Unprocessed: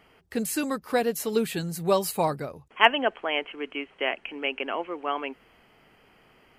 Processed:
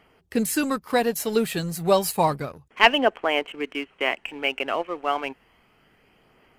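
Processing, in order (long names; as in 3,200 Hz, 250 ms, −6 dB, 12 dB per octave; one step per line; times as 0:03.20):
leveller curve on the samples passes 1
phase shifter 0.31 Hz, delay 1.7 ms, feedback 25%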